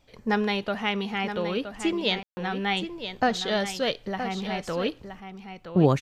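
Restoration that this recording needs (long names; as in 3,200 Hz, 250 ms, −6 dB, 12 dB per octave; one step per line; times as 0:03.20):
ambience match 0:02.23–0:02.37
echo removal 970 ms −9.5 dB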